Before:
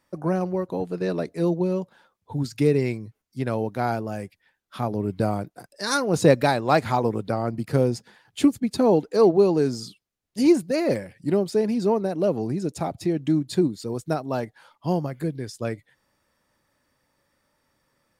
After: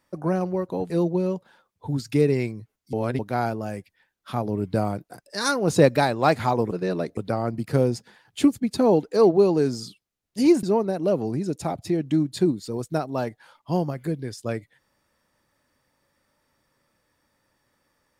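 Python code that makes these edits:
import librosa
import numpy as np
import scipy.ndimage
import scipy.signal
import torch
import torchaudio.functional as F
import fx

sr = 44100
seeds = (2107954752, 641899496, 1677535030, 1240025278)

y = fx.edit(x, sr, fx.move(start_s=0.9, length_s=0.46, to_s=7.17),
    fx.reverse_span(start_s=3.39, length_s=0.26),
    fx.cut(start_s=10.63, length_s=1.16), tone=tone)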